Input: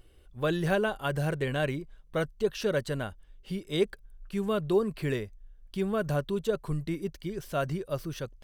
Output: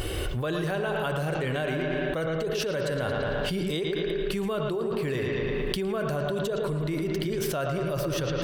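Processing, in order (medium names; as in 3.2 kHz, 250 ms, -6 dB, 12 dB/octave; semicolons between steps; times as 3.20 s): high-pass 73 Hz 6 dB/octave; peaking EQ 210 Hz -5 dB 0.53 oct; on a send: bucket-brigade echo 112 ms, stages 4096, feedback 50%, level -8 dB; on the sum: spring tank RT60 1.7 s, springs 31/39 ms, chirp 70 ms, DRR 9.5 dB; level flattener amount 100%; trim -8 dB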